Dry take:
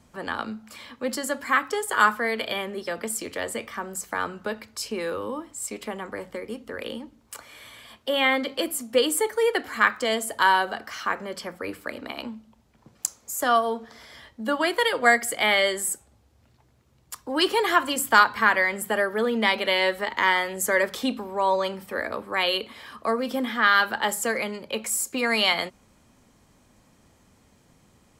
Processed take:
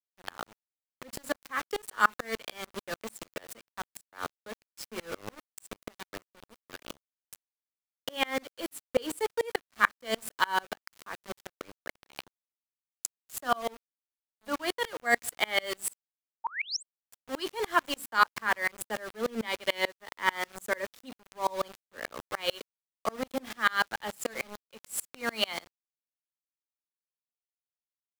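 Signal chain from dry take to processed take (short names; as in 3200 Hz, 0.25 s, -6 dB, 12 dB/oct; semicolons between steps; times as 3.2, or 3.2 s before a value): sample gate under -28 dBFS; painted sound rise, 16.44–16.83, 830–8600 Hz -26 dBFS; dB-ramp tremolo swelling 6.8 Hz, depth 32 dB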